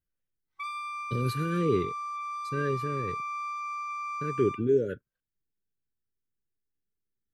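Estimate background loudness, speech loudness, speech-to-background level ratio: -35.5 LUFS, -30.5 LUFS, 5.0 dB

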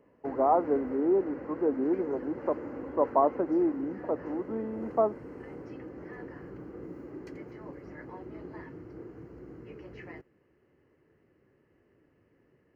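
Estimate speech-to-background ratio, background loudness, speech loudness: 13.0 dB, -42.5 LUFS, -29.5 LUFS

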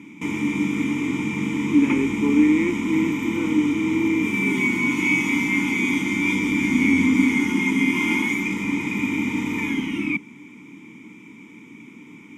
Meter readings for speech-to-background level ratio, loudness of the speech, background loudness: -0.5 dB, -22.5 LUFS, -22.0 LUFS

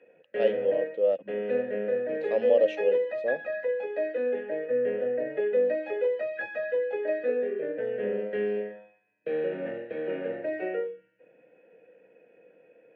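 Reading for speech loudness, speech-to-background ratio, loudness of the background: -28.0 LUFS, 2.0 dB, -30.0 LUFS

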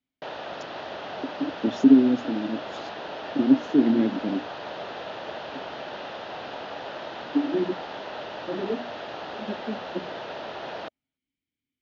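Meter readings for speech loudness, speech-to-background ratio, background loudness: -24.0 LUFS, 12.0 dB, -36.0 LUFS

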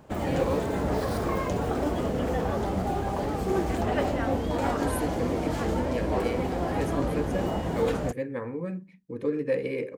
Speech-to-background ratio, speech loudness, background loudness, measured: -4.5 dB, -33.5 LUFS, -29.0 LUFS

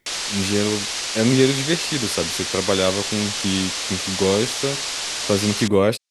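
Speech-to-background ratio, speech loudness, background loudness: 1.5 dB, -22.5 LUFS, -24.0 LUFS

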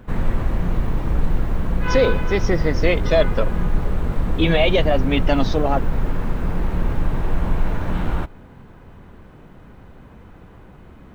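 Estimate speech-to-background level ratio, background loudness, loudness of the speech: 4.0 dB, -25.0 LUFS, -21.0 LUFS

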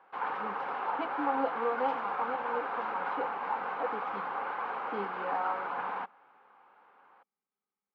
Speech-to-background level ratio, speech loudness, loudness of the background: -1.5 dB, -37.0 LUFS, -35.5 LUFS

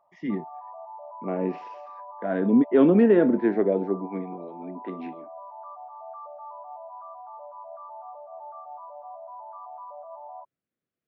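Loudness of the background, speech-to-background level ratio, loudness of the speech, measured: -42.0 LUFS, 19.5 dB, -22.5 LUFS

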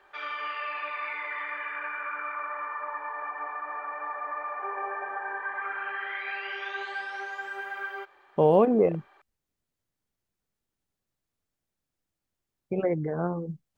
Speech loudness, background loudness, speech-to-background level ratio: -25.0 LUFS, -34.0 LUFS, 9.0 dB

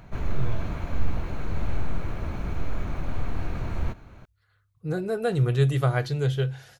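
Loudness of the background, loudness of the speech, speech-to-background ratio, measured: -33.5 LUFS, -26.0 LUFS, 7.5 dB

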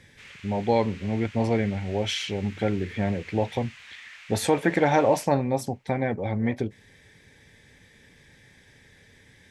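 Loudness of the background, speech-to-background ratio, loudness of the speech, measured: -45.5 LUFS, 19.5 dB, -26.0 LUFS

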